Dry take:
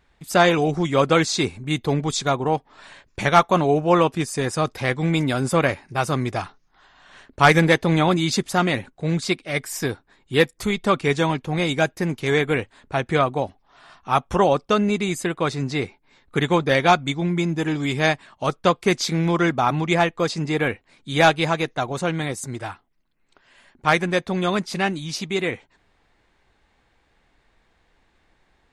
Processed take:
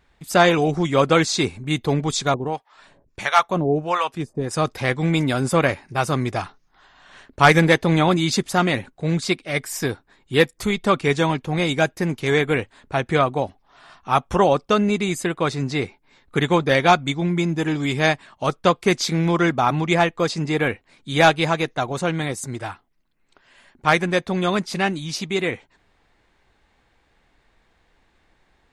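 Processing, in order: 2.34–4.51 harmonic tremolo 1.5 Hz, depth 100%, crossover 660 Hz; gain +1 dB

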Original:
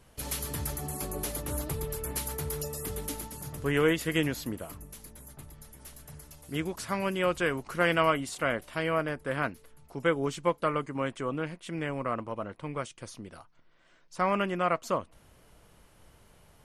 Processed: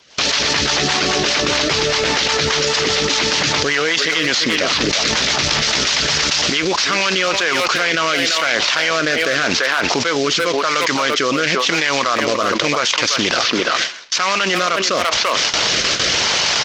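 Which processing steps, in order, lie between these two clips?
CVSD 32 kbps; AGC gain up to 15.5 dB; speakerphone echo 0.34 s, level -10 dB; rotary speaker horn 5 Hz, later 0.9 Hz, at 6.57; harmonic-percussive split harmonic -6 dB; gate with hold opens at -38 dBFS; HPF 870 Hz 6 dB/oct; high shelf 2200 Hz +10 dB; fast leveller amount 100%; gain -3 dB

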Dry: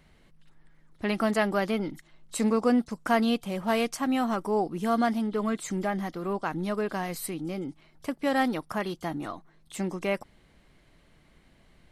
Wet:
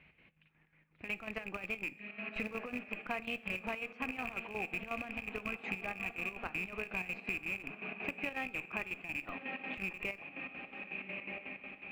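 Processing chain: rattling part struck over -35 dBFS, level -26 dBFS; HPF 56 Hz 12 dB/oct; diffused feedback echo 1.189 s, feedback 51%, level -11.5 dB; dynamic EQ 240 Hz, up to -4 dB, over -36 dBFS, Q 2.4; ladder low-pass 2600 Hz, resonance 85%; in parallel at -10 dB: Schmitt trigger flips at -33.5 dBFS; on the sum: compressor 10:1, threshold -41 dBFS, peak gain reduction 15 dB; chopper 5.5 Hz, depth 65%, duty 60%; reverb RT60 0.60 s, pre-delay 3 ms, DRR 14.5 dB; gain +6.5 dB

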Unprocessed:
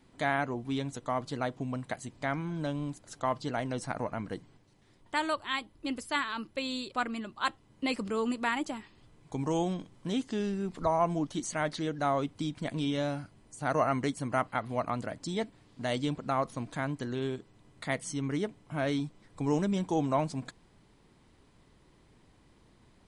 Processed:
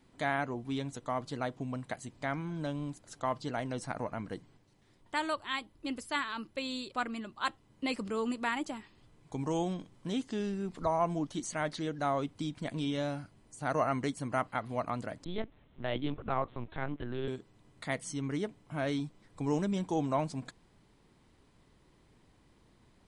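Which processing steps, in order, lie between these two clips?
15.24–17.28 LPC vocoder at 8 kHz pitch kept; gain -2.5 dB

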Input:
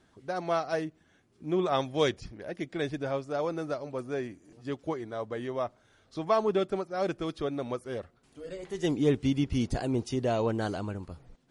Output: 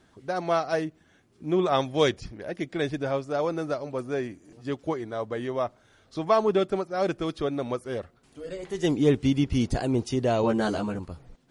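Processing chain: 10.42–10.99 doubler 14 ms -2 dB; gain +4 dB

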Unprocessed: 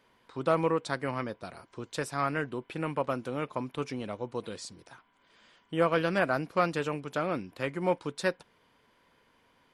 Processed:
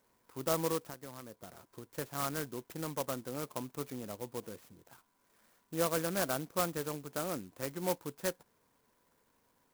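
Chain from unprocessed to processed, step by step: band shelf 5800 Hz -12 dB; 0.84–1.97 compressor 6:1, threshold -37 dBFS, peak gain reduction 11.5 dB; clock jitter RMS 0.099 ms; gain -6 dB

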